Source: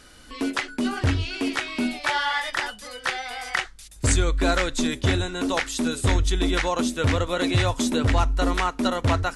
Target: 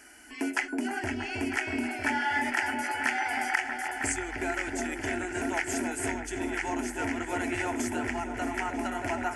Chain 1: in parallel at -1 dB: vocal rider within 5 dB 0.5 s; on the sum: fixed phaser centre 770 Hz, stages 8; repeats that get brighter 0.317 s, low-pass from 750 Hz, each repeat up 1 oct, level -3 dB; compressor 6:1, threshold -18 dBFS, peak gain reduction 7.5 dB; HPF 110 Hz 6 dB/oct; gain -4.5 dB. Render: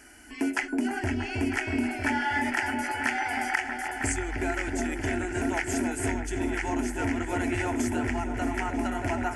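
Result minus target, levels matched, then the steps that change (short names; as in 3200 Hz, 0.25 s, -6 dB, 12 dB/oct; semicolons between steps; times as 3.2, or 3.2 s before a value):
125 Hz band +7.0 dB
change: HPF 380 Hz 6 dB/oct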